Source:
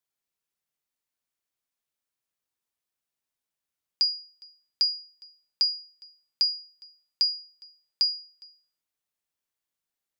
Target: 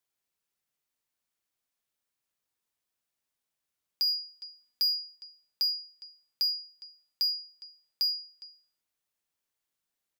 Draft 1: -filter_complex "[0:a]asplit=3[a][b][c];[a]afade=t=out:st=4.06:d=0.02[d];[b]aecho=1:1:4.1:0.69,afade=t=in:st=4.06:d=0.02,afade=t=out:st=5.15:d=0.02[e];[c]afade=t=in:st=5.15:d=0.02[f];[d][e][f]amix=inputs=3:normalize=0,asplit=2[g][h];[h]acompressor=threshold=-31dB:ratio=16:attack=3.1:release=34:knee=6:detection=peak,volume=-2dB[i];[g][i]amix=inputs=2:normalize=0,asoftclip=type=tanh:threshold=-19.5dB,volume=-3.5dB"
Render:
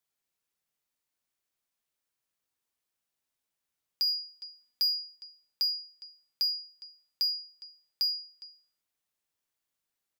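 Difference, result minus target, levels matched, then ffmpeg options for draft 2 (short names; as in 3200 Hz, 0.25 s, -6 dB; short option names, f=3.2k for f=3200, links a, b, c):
compressor: peak gain reduction +5.5 dB
-filter_complex "[0:a]asplit=3[a][b][c];[a]afade=t=out:st=4.06:d=0.02[d];[b]aecho=1:1:4.1:0.69,afade=t=in:st=4.06:d=0.02,afade=t=out:st=5.15:d=0.02[e];[c]afade=t=in:st=5.15:d=0.02[f];[d][e][f]amix=inputs=3:normalize=0,asplit=2[g][h];[h]acompressor=threshold=-25dB:ratio=16:attack=3.1:release=34:knee=6:detection=peak,volume=-2dB[i];[g][i]amix=inputs=2:normalize=0,asoftclip=type=tanh:threshold=-19.5dB,volume=-3.5dB"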